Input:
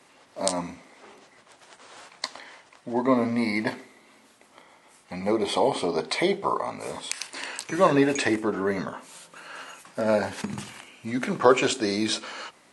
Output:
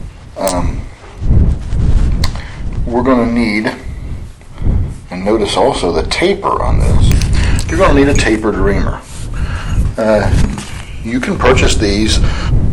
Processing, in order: wind noise 83 Hz -26 dBFS; sine folder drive 10 dB, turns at -1 dBFS; trim -1 dB

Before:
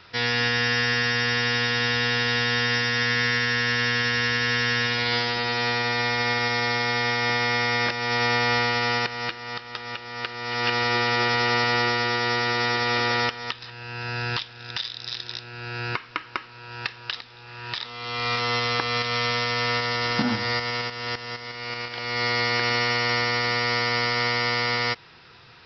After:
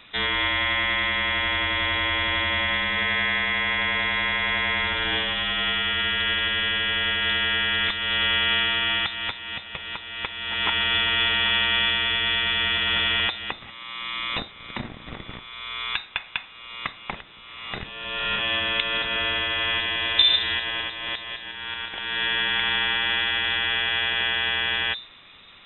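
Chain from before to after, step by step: peaking EQ 260 Hz +9.5 dB 1.2 oct; hum notches 60/120/180/240 Hz; frequency inversion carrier 3.8 kHz

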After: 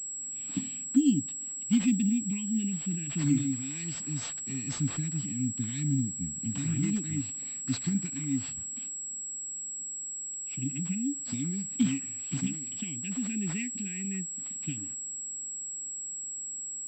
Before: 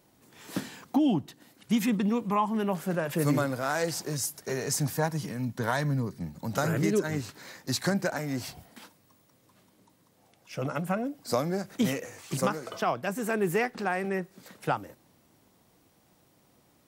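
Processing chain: elliptic band-stop 260–2500 Hz, stop band 40 dB; peaking EQ 280 Hz +7 dB 0.23 oct; class-D stage that switches slowly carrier 7.7 kHz

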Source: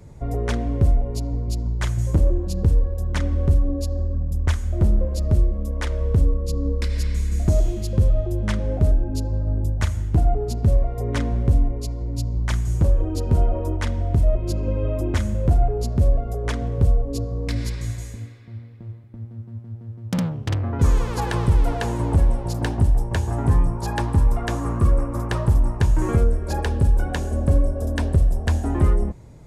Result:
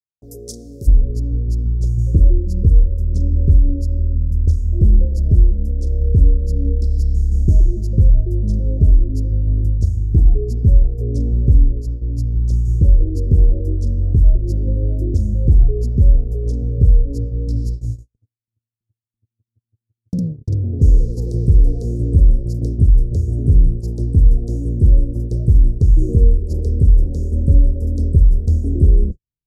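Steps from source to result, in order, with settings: elliptic band-stop 470–5100 Hz, stop band 40 dB; gate -27 dBFS, range -54 dB; tilt EQ +3.5 dB/octave, from 0.86 s -2 dB/octave; trim -1.5 dB

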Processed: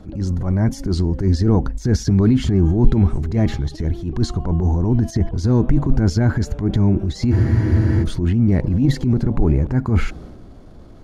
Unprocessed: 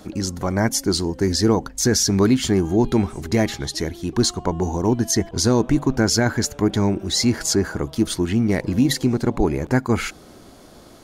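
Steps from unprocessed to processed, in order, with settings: transient shaper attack -9 dB, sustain +6 dB; RIAA curve playback; spectral freeze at 7.34 s, 0.69 s; trim -4.5 dB

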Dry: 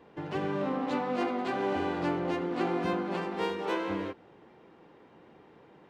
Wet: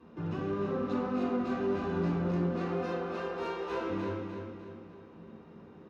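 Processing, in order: 2.54–3.81 s: high-pass 380 Hz 24 dB/octave; saturation -27.5 dBFS, distortion -14 dB; peak limiter -31 dBFS, peak gain reduction 3.5 dB; wow and flutter 23 cents; feedback delay 300 ms, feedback 43%, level -6 dB; reverberation RT60 0.45 s, pre-delay 3 ms, DRR -1.5 dB; trim -8.5 dB

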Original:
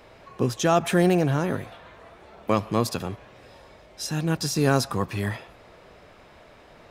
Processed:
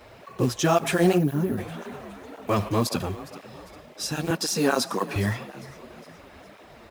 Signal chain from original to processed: on a send: frequency-shifting echo 408 ms, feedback 51%, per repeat +31 Hz, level -19 dB; 1.66–2.69 s: on the sum: transient shaper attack -2 dB, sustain +5 dB; 4.30–5.16 s: high-pass 200 Hz 24 dB/octave; in parallel at -3 dB: peak limiter -16 dBFS, peak gain reduction 8.5 dB; on the sum: companded quantiser 6-bit; 1.18–1.58 s: time-frequency box 420–9700 Hz -12 dB; cancelling through-zero flanger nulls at 1.9 Hz, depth 7.8 ms

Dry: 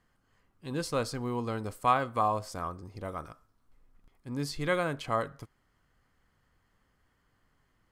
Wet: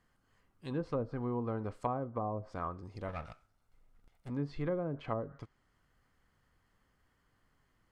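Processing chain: 3.08–4.30 s: comb filter that takes the minimum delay 1.4 ms; low-pass that closes with the level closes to 500 Hz, closed at -26.5 dBFS; trim -2 dB

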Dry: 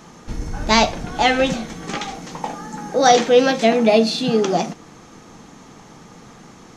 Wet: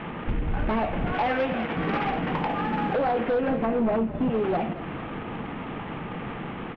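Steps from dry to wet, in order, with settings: CVSD coder 16 kbps; 1.12–1.77 s: high-pass 390 Hz 6 dB/octave; 3.48–4.30 s: tilt EQ -2.5 dB/octave; compression 5:1, threshold -30 dBFS, peak gain reduction 19 dB; 2.34–2.98 s: crackle 360 per s -55 dBFS; sine folder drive 7 dB, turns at -18.5 dBFS; distance through air 81 m; frequency-shifting echo 221 ms, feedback 63%, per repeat -35 Hz, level -15.5 dB; endings held to a fixed fall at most 240 dB/s; trim -1.5 dB

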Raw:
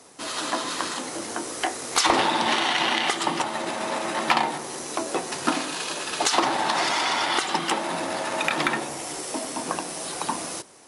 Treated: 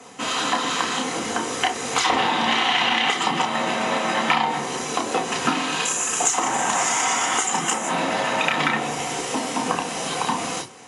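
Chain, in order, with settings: 5.85–7.89 s: resonant high shelf 5.5 kHz +9.5 dB, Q 3; compression 3:1, threshold -27 dBFS, peak gain reduction 14 dB; reverberation, pre-delay 3 ms, DRR 2.5 dB

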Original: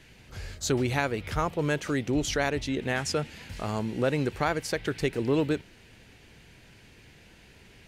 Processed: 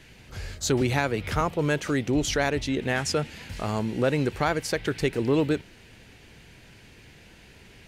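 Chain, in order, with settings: saturation -13.5 dBFS, distortion -26 dB; 0.81–1.41 s: three bands compressed up and down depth 40%; trim +3 dB

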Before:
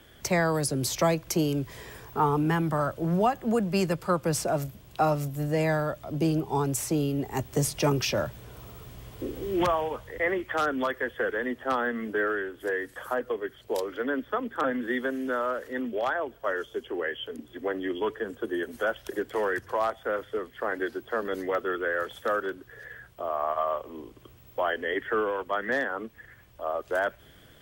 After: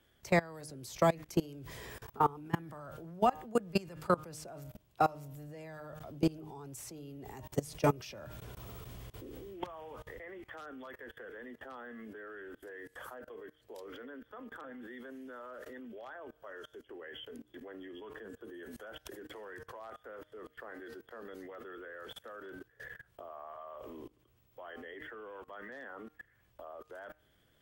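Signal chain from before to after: de-hum 153.9 Hz, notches 18; level held to a coarse grid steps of 23 dB; trim -1 dB

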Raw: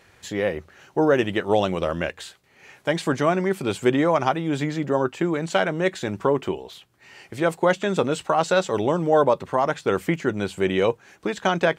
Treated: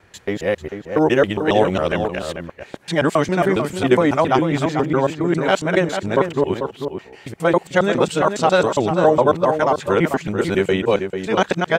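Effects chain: time reversed locally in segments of 137 ms; echo from a far wall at 76 m, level -7 dB; tape noise reduction on one side only decoder only; trim +4 dB

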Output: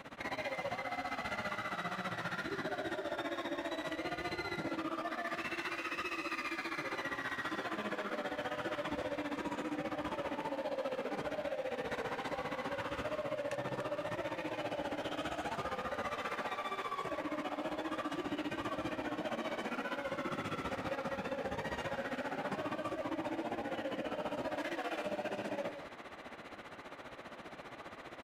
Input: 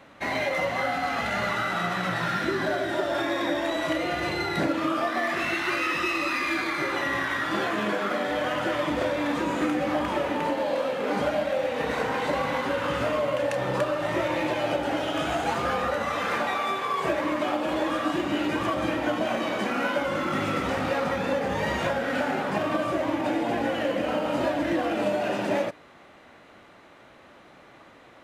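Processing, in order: 24.55–25.06 s: high-pass 890 Hz 6 dB/octave; in parallel at +2 dB: compressor with a negative ratio -34 dBFS, ratio -0.5; on the sum: tremolo 15 Hz, depth 93%; peak limiter -20.5 dBFS, peak gain reduction 8 dB; speakerphone echo 170 ms, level -7 dB; trim -8.5 dB

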